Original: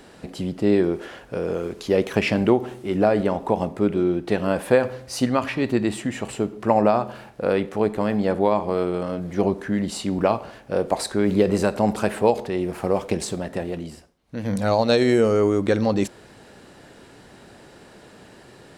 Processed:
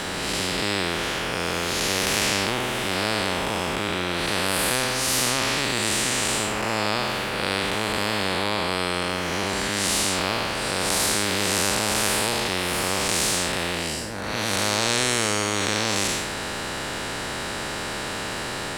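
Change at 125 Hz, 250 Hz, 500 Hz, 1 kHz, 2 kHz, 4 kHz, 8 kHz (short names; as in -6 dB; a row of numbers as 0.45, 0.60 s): -3.5, -7.0, -7.5, +0.5, +8.5, +13.0, +15.0 dB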